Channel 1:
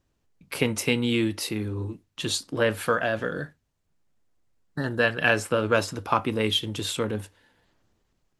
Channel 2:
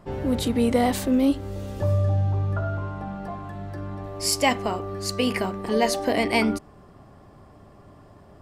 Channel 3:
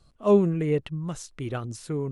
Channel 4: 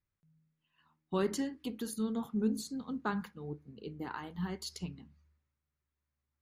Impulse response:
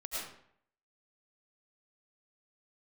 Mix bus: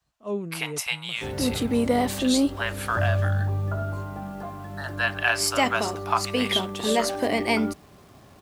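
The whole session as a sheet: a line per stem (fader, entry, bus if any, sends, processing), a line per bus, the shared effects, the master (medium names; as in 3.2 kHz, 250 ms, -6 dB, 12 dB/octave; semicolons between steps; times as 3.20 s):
+0.5 dB, 0.00 s, no send, Chebyshev high-pass 660 Hz, order 5
-1.5 dB, 1.15 s, no send, hum notches 60/120/180 Hz; bit crusher 9-bit
-11.0 dB, 0.00 s, no send, expander -54 dBFS
-16.5 dB, 1.35 s, no send, none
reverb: none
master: high-pass 45 Hz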